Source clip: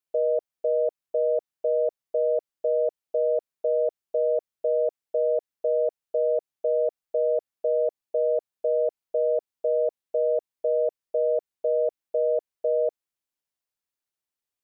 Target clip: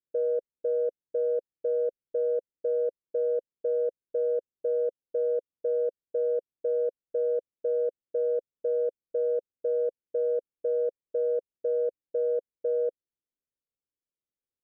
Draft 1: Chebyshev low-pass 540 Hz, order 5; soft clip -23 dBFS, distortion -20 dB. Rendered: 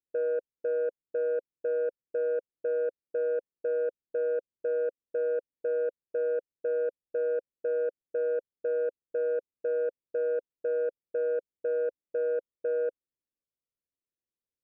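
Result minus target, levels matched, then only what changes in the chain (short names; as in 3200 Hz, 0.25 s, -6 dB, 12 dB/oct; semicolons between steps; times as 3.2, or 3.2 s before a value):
soft clip: distortion +19 dB
change: soft clip -12 dBFS, distortion -40 dB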